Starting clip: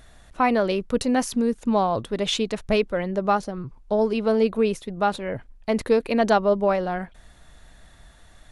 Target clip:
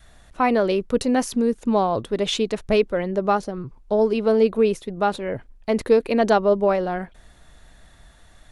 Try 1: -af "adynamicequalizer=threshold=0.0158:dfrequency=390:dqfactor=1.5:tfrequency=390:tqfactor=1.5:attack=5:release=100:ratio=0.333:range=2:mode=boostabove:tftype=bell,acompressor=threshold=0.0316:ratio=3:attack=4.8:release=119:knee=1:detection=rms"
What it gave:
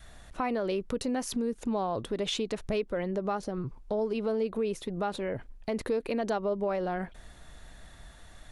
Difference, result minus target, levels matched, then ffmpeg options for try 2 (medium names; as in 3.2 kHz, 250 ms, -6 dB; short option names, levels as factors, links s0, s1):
compression: peak gain reduction +14.5 dB
-af "adynamicequalizer=threshold=0.0158:dfrequency=390:dqfactor=1.5:tfrequency=390:tqfactor=1.5:attack=5:release=100:ratio=0.333:range=2:mode=boostabove:tftype=bell"